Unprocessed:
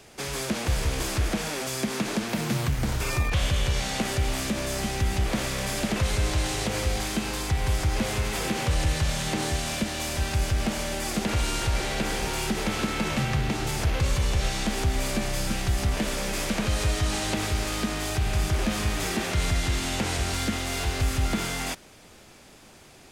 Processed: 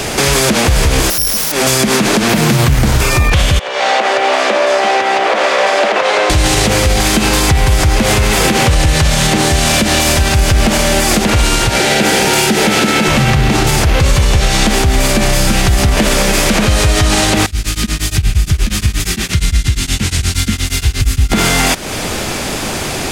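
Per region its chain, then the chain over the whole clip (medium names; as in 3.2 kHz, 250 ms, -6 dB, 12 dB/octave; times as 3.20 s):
1.10–1.52 s: careless resampling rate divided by 8×, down none, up zero stuff + valve stage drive 19 dB, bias 0.4 + level flattener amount 100%
3.59–6.30 s: ladder high-pass 440 Hz, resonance 25% + tape spacing loss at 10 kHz 25 dB
11.69–13.08 s: high-pass 150 Hz + band-stop 1.1 kHz, Q 5.9
17.46–21.32 s: amplifier tone stack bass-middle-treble 6-0-2 + tremolo of two beating tones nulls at 8.5 Hz
whole clip: compression 5:1, threshold -39 dBFS; loudness maximiser +33 dB; trim -1 dB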